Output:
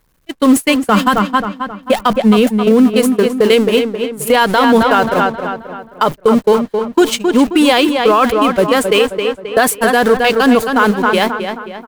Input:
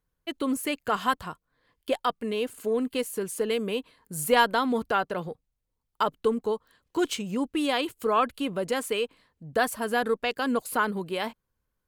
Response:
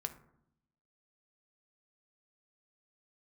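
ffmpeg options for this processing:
-filter_complex "[0:a]aeval=exprs='val(0)+0.5*0.0178*sgn(val(0))':c=same,agate=range=-36dB:threshold=-27dB:ratio=16:detection=peak,asettb=1/sr,asplit=3[a][b][c];[a]atrim=end=0.804[d];[b]atrim=start=0.8:end=2.93,asetpts=PTS-STARTPTS,afade=t=in:d=0.004:c=qsin,afade=t=out:st=2.126:d=0.004:c=qsin,equalizer=f=210:t=o:w=0.34:g=13.5[e];[c]atrim=start=2.926[f];[d][e]acrossfade=d=0.004:c1=hsin:c2=qsin[g];[g][f]acrossfade=d=0.004:c1=qsin:c2=hsin,asplit=2[h][i];[i]adelay=266,lowpass=f=3.6k:p=1,volume=-8dB,asplit=2[j][k];[k]adelay=266,lowpass=f=3.6k:p=1,volume=0.44,asplit=2[l][m];[m]adelay=266,lowpass=f=3.6k:p=1,volume=0.44,asplit=2[n][o];[o]adelay=266,lowpass=f=3.6k:p=1,volume=0.44,asplit=2[p][q];[q]adelay=266,lowpass=f=3.6k:p=1,volume=0.44[r];[h][j][l][n][p][r]amix=inputs=6:normalize=0,alimiter=level_in=19dB:limit=-1dB:release=50:level=0:latency=1,volume=-1dB"

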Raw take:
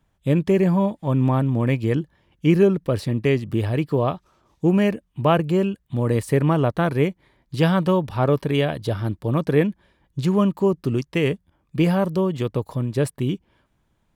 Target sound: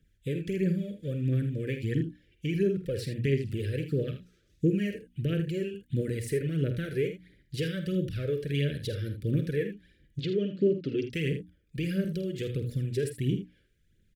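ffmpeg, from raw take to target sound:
-filter_complex "[0:a]equalizer=f=260:t=o:w=0.88:g=-2.5,bandreject=f=60:t=h:w=6,bandreject=f=120:t=h:w=6,bandreject=f=180:t=h:w=6,bandreject=f=240:t=h:w=6,bandreject=f=300:t=h:w=6,acompressor=threshold=-25dB:ratio=3,aphaser=in_gain=1:out_gain=1:delay=2.6:decay=0.52:speed=1.5:type=triangular,asuperstop=centerf=890:order=8:qfactor=0.83,asplit=3[a][b][c];[a]afade=t=out:st=10.19:d=0.02[d];[b]highpass=130,equalizer=f=280:t=q:w=4:g=9,equalizer=f=570:t=q:w=4:g=7,equalizer=f=1.1k:t=q:w=4:g=4,equalizer=f=3.3k:t=q:w=4:g=5,lowpass=f=4.7k:w=0.5412,lowpass=f=4.7k:w=1.3066,afade=t=in:st=10.19:d=0.02,afade=t=out:st=11.03:d=0.02[e];[c]afade=t=in:st=11.03:d=0.02[f];[d][e][f]amix=inputs=3:normalize=0,asplit=2[g][h];[h]aecho=0:1:49|79:0.299|0.282[i];[g][i]amix=inputs=2:normalize=0,volume=-4dB"

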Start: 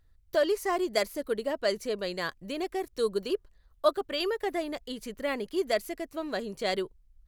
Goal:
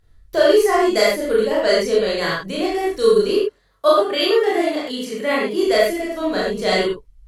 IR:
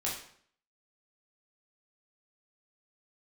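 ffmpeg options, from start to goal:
-filter_complex "[0:a]asettb=1/sr,asplit=3[a][b][c];[a]atrim=end=3.324[d];[b]atrim=start=3.32:end=5.6,asetpts=PTS-STARTPTS,afade=t=in:d=0.004:c=qsin,afade=t=out:st=2.276:d=0.004:c=qsin,highpass=150[e];[c]atrim=start=5.596[f];[d][e]acrossfade=d=0.004:c1=hsin:c2=qsin[g];[g][f]acrossfade=d=0.004:c1=qsin:c2=hsin[h];[1:a]atrim=start_sample=2205,atrim=end_sample=3528,asetrate=25137,aresample=44100[i];[h][i]afir=irnorm=-1:irlink=0,volume=4.5dB"

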